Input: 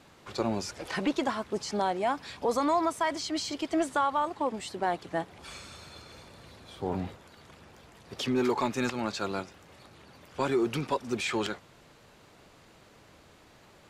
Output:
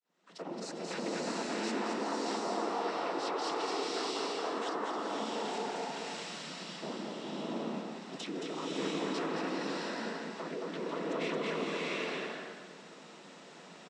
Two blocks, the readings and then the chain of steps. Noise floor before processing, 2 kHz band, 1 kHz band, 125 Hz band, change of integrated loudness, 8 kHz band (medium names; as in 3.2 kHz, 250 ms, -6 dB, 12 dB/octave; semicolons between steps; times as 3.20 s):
-57 dBFS, -2.5 dB, -5.5 dB, -8.0 dB, -5.5 dB, -3.5 dB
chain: fade-in on the opening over 1.14 s; low-pass that closes with the level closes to 2.3 kHz, closed at -25 dBFS; compression, threshold -33 dBFS, peak gain reduction 11 dB; noise-vocoded speech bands 12; on a send: delay 221 ms -4 dB; on the sum: peak limiter -29.5 dBFS, peak gain reduction 7 dB; frequency shift +59 Hz; swelling reverb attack 680 ms, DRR -4.5 dB; trim -1.5 dB